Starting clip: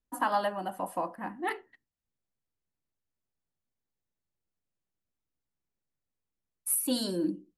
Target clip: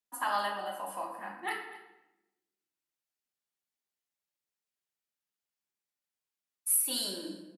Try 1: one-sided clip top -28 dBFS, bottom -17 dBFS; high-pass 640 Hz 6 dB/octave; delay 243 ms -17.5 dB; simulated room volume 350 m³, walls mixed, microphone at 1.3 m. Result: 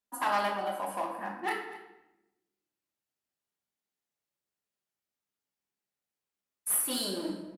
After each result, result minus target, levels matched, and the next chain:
one-sided clip: distortion +19 dB; 500 Hz band +4.5 dB
one-sided clip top -17 dBFS, bottom -17 dBFS; high-pass 640 Hz 6 dB/octave; delay 243 ms -17.5 dB; simulated room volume 350 m³, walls mixed, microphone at 1.3 m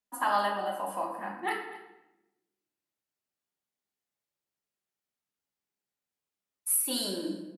500 Hz band +4.0 dB
one-sided clip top -17 dBFS, bottom -17 dBFS; high-pass 1.6 kHz 6 dB/octave; delay 243 ms -17.5 dB; simulated room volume 350 m³, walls mixed, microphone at 1.3 m

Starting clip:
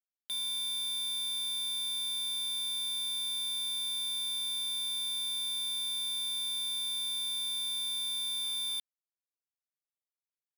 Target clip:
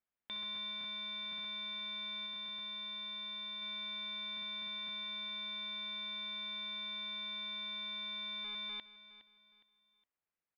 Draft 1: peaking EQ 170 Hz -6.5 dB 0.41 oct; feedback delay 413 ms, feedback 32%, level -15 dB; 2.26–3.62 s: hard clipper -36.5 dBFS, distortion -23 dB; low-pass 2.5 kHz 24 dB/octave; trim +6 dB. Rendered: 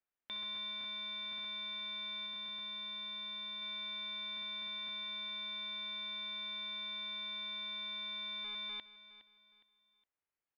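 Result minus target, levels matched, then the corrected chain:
125 Hz band -2.5 dB
peaking EQ 170 Hz +2.5 dB 0.41 oct; feedback delay 413 ms, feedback 32%, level -15 dB; 2.26–3.62 s: hard clipper -36.5 dBFS, distortion -22 dB; low-pass 2.5 kHz 24 dB/octave; trim +6 dB

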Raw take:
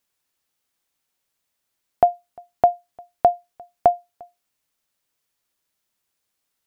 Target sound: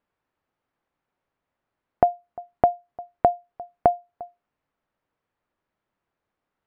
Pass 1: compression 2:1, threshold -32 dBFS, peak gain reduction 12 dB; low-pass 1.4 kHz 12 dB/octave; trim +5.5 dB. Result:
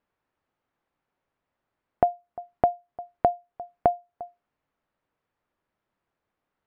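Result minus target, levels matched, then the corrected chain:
compression: peak gain reduction +3 dB
compression 2:1, threshold -26 dBFS, peak gain reduction 9 dB; low-pass 1.4 kHz 12 dB/octave; trim +5.5 dB

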